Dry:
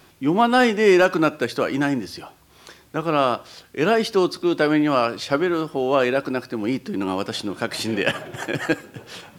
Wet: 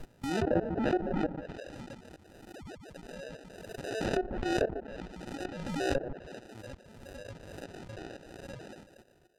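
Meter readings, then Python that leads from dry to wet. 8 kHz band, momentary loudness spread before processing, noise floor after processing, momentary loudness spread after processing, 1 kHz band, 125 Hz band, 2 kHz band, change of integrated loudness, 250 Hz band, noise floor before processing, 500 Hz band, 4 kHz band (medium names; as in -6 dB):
-13.0 dB, 12 LU, -62 dBFS, 18 LU, -16.5 dB, -9.5 dB, -17.5 dB, -14.0 dB, -14.5 dB, -53 dBFS, -14.5 dB, -17.0 dB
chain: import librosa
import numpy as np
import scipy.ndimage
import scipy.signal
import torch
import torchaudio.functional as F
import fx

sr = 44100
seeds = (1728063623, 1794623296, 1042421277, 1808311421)

p1 = fx.spec_dropout(x, sr, seeds[0], share_pct=44)
p2 = fx.hum_notches(p1, sr, base_hz=50, count=8)
p3 = fx.noise_reduce_blind(p2, sr, reduce_db=23)
p4 = fx.spec_paint(p3, sr, seeds[1], shape='fall', start_s=2.53, length_s=0.23, low_hz=550.0, high_hz=2100.0, level_db=-36.0)
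p5 = fx.low_shelf(p4, sr, hz=74.0, db=5.5)
p6 = fx.level_steps(p5, sr, step_db=19)
p7 = fx.harmonic_tremolo(p6, sr, hz=2.3, depth_pct=50, crossover_hz=510.0)
p8 = p7 + fx.echo_stepped(p7, sr, ms=146, hz=1200.0, octaves=1.4, feedback_pct=70, wet_db=-4, dry=0)
p9 = fx.sample_hold(p8, sr, seeds[2], rate_hz=1100.0, jitter_pct=0)
p10 = fx.env_lowpass_down(p9, sr, base_hz=930.0, full_db=-27.0)
p11 = fx.pre_swell(p10, sr, db_per_s=34.0)
y = F.gain(torch.from_numpy(p11), -4.0).numpy()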